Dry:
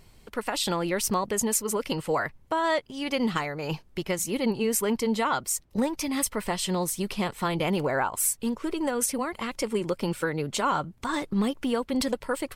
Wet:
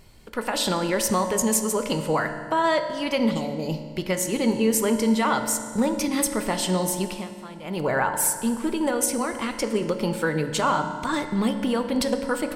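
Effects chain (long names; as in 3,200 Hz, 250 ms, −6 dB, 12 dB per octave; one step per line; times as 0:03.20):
0:03.31–0:03.90: Butterworth band-reject 1,600 Hz, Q 0.59
0:07.03–0:07.87: duck −17 dB, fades 0.24 s
convolution reverb RT60 1.9 s, pre-delay 3 ms, DRR 6 dB
level +2.5 dB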